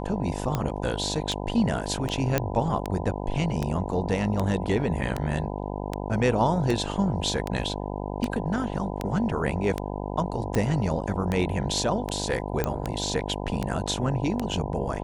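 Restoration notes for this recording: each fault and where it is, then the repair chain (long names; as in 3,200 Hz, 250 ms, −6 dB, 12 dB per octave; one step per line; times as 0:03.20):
mains buzz 50 Hz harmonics 20 −32 dBFS
scratch tick 78 rpm −13 dBFS
0:02.38: click −8 dBFS
0:12.64: click −11 dBFS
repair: click removal
hum removal 50 Hz, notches 20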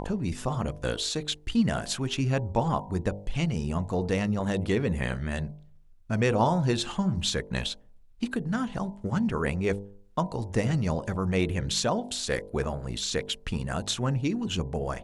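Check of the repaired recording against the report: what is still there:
none of them is left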